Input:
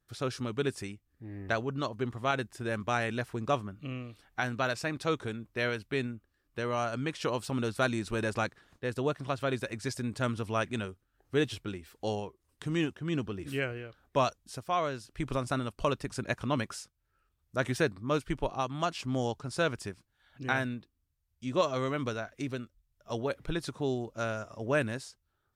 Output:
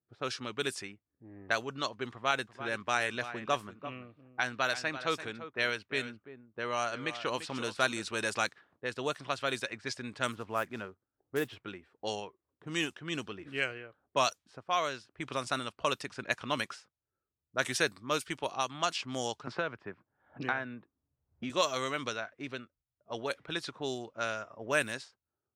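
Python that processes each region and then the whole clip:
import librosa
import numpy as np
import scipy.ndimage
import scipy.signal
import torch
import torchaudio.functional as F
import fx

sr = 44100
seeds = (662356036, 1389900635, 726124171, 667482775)

y = fx.chain(x, sr, fx.high_shelf(hz=4600.0, db=-5.5),
    fx.echo_single(ms=341, db=-12.0), at=(2.13, 8.03))
y = fx.chain(y, sr, fx.lowpass(hz=1500.0, slope=12),
    fx.quant_float(bits=4), at=(10.32, 11.64))
y = fx.chain(y, sr, fx.lowpass(hz=1700.0, slope=12),
    fx.band_squash(depth_pct=100), at=(19.47, 21.5))
y = fx.env_lowpass(y, sr, base_hz=420.0, full_db=-26.0)
y = scipy.signal.sosfilt(scipy.signal.butter(2, 75.0, 'highpass', fs=sr, output='sos'), y)
y = fx.tilt_eq(y, sr, slope=3.5)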